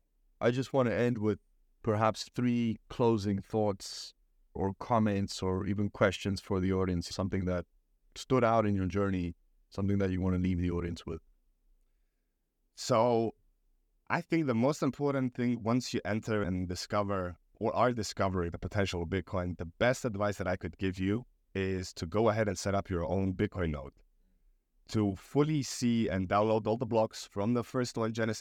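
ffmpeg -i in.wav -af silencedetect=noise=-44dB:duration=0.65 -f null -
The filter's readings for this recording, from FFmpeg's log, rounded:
silence_start: 11.18
silence_end: 12.78 | silence_duration: 1.60
silence_start: 13.30
silence_end: 14.10 | silence_duration: 0.80
silence_start: 23.89
silence_end: 24.89 | silence_duration: 1.01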